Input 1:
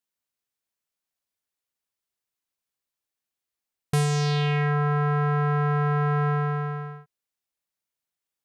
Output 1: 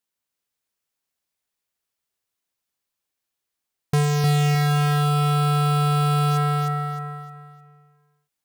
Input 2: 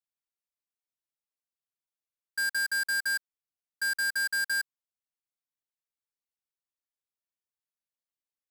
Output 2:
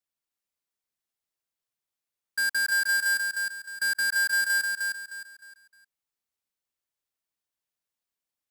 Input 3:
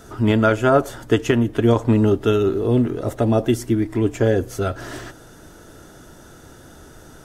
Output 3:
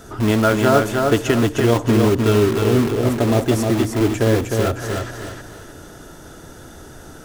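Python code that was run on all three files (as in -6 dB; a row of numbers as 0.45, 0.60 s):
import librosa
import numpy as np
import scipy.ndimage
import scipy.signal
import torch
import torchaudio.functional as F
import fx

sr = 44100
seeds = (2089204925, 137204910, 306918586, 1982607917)

p1 = (np.mod(10.0 ** (18.0 / 20.0) * x + 1.0, 2.0) - 1.0) / 10.0 ** (18.0 / 20.0)
p2 = x + F.gain(torch.from_numpy(p1), -8.0).numpy()
y = fx.echo_feedback(p2, sr, ms=308, feedback_pct=32, wet_db=-4.0)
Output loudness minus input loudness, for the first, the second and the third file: +3.5, +3.5, +1.5 LU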